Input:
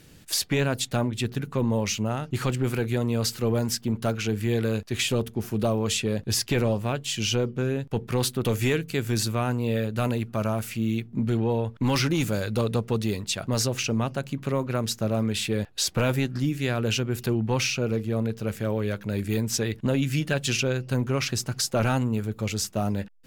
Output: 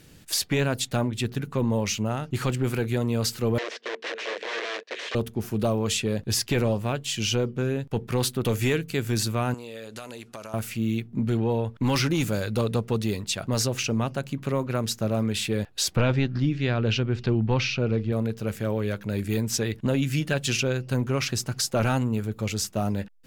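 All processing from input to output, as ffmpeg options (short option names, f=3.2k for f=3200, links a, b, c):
-filter_complex "[0:a]asettb=1/sr,asplit=3[a][b][c];[a]atrim=end=3.584[d];[b]atrim=start=3.58:end=5.15,asetpts=PTS-STARTPTS,afade=t=in:d=0.004:c=qsin,afade=t=out:st=1.566:d=0.004:c=qsin,aeval=exprs='(mod(16.8*val(0)+1,2)-1)/16.8':c=same,highpass=f=400:w=0.5412,highpass=f=400:w=1.3066,equalizer=f=470:t=q:w=4:g=8,equalizer=f=820:t=q:w=4:g=-8,equalizer=f=1.3k:t=q:w=4:g=-6,equalizer=f=1.8k:t=q:w=4:g=5,equalizer=f=4.7k:t=q:w=4:g=-5,lowpass=f=5k:w=0.5412,lowpass=f=5k:w=1.3066[e];[c]atrim=start=5.146[f];[d][e]acrossfade=d=0.004:c1=hsin:c2=qsin[g];[g][f]acrossfade=d=0.004:c1=qsin:c2=hsin,asettb=1/sr,asplit=3[h][i][j];[h]atrim=end=9.544[k];[i]atrim=start=9.54:end=10.54,asetpts=PTS-STARTPTS,afade=t=in:d=0.004:c=qsin,afade=t=out:st=0.996:d=0.004:c=qsin,lowpass=9.2k,bass=f=250:g=-15,treble=f=4k:g=10,acompressor=threshold=-34dB:ratio=10:attack=3.2:release=140:knee=1:detection=peak[l];[j]atrim=start=10.536[m];[k][l]acrossfade=d=0.004:c1=hsin:c2=qsin[n];[n][m]acrossfade=d=0.004:c1=qsin:c2=hsin,asettb=1/sr,asplit=3[o][p][q];[o]atrim=end=15.964[r];[p]atrim=start=15.96:end=18.12,asetpts=PTS-STARTPTS,afade=t=in:d=0.004:c=qsin,afade=t=out:st=2.156:d=0.004:c=qsin,lowpass=f=4.9k:w=0.5412,lowpass=f=4.9k:w=1.3066,lowshelf=f=84:g=9[s];[q]atrim=start=18.116[t];[r][s]acrossfade=d=0.004:c1=hsin:c2=qsin[u];[u][t]acrossfade=d=0.004:c1=qsin:c2=hsin"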